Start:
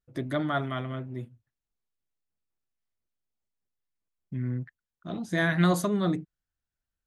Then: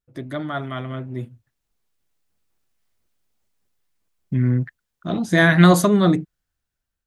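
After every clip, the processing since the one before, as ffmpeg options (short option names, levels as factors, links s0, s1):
-af "dynaudnorm=f=540:g=5:m=5.62"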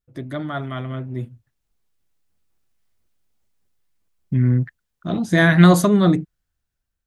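-af "lowshelf=f=180:g=5,volume=0.891"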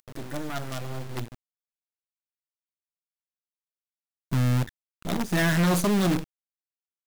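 -af "acompressor=mode=upward:threshold=0.0178:ratio=2.5,acrusher=bits=4:dc=4:mix=0:aa=0.000001,asoftclip=type=tanh:threshold=0.106"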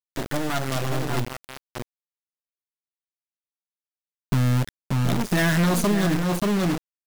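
-filter_complex "[0:a]asplit=2[s0][s1];[s1]adelay=583.1,volume=0.501,highshelf=f=4000:g=-13.1[s2];[s0][s2]amix=inputs=2:normalize=0,aeval=exprs='val(0)*gte(abs(val(0)),0.0282)':c=same,acompressor=threshold=0.0447:ratio=6,volume=2.51"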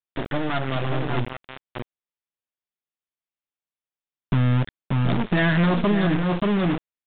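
-af "aresample=8000,aresample=44100,volume=1.12"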